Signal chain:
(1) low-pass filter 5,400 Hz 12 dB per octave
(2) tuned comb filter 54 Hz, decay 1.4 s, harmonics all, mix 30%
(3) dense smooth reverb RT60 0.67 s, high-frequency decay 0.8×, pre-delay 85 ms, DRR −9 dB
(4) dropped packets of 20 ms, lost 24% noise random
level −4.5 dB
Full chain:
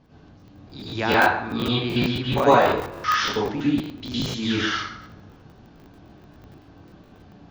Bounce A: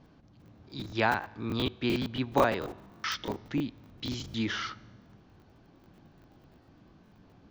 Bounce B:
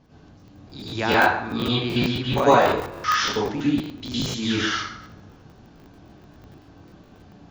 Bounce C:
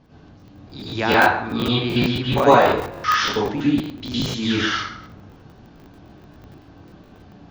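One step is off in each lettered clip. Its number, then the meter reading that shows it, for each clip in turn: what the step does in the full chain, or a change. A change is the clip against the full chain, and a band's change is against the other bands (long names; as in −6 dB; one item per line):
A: 3, change in crest factor +4.5 dB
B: 1, 8 kHz band +4.0 dB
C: 2, change in integrated loudness +3.0 LU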